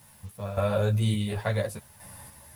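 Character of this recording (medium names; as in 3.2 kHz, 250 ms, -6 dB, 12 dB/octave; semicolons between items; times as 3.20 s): random-step tremolo, depth 80%; a quantiser's noise floor 10-bit, dither none; a shimmering, thickened sound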